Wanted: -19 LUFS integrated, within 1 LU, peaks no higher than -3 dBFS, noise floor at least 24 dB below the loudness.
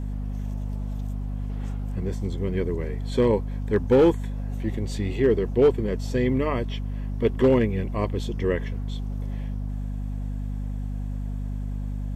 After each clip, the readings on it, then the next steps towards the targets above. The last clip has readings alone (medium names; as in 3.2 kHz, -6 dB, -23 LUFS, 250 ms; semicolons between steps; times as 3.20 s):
clipped samples 0.3%; clipping level -11.5 dBFS; hum 50 Hz; highest harmonic 250 Hz; hum level -27 dBFS; loudness -26.5 LUFS; peak level -11.5 dBFS; loudness target -19.0 LUFS
-> clip repair -11.5 dBFS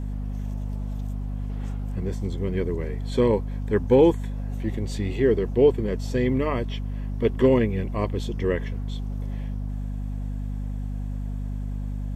clipped samples 0.0%; hum 50 Hz; highest harmonic 250 Hz; hum level -27 dBFS
-> de-hum 50 Hz, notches 5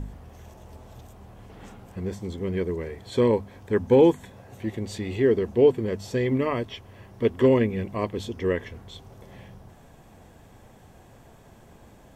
hum not found; loudness -24.5 LUFS; peak level -7.5 dBFS; loudness target -19.0 LUFS
-> trim +5.5 dB; peak limiter -3 dBFS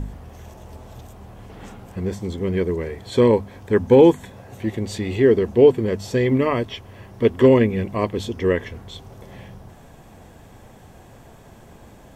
loudness -19.5 LUFS; peak level -3.0 dBFS; noise floor -46 dBFS